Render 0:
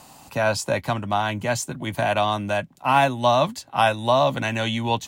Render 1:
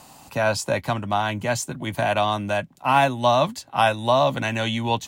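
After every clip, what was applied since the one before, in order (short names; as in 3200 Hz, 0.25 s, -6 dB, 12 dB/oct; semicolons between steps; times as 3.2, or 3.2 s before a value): nothing audible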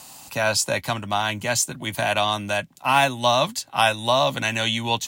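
high shelf 2000 Hz +11.5 dB; gain -3 dB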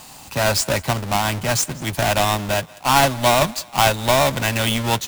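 half-waves squared off; low shelf 100 Hz +8 dB; thinning echo 0.189 s, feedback 49%, level -22.5 dB; gain -1.5 dB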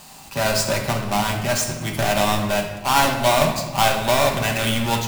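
reverb RT60 1.1 s, pre-delay 5 ms, DRR 1.5 dB; gain -3.5 dB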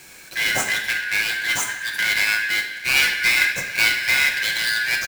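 four-band scrambler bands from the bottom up 4123; echo 0.736 s -21.5 dB; gain -1 dB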